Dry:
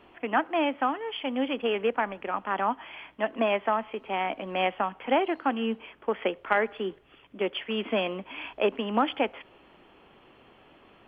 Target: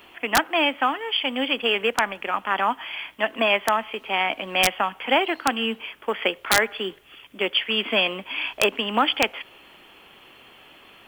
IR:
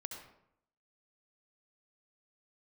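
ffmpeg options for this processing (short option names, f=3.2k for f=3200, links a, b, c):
-af "crystalizer=i=9.5:c=0,aeval=exprs='(mod(2.24*val(0)+1,2)-1)/2.24':c=same"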